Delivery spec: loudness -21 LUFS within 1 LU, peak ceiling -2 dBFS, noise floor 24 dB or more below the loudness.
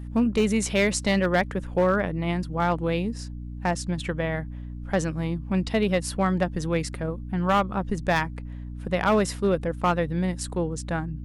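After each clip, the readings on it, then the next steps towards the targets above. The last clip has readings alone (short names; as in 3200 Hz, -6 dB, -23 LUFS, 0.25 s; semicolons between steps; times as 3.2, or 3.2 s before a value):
clipped 0.5%; flat tops at -14.5 dBFS; hum 60 Hz; harmonics up to 300 Hz; hum level -34 dBFS; loudness -25.5 LUFS; peak -14.5 dBFS; loudness target -21.0 LUFS
-> clip repair -14.5 dBFS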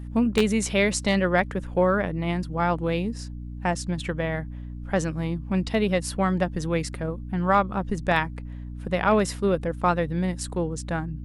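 clipped 0.0%; hum 60 Hz; harmonics up to 300 Hz; hum level -33 dBFS
-> de-hum 60 Hz, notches 5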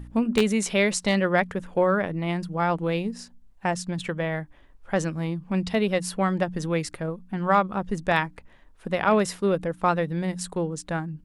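hum none; loudness -25.5 LUFS; peak -5.5 dBFS; loudness target -21.0 LUFS
-> gain +4.5 dB; limiter -2 dBFS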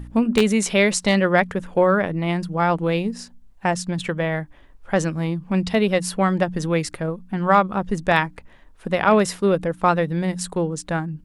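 loudness -21.0 LUFS; peak -2.0 dBFS; noise floor -49 dBFS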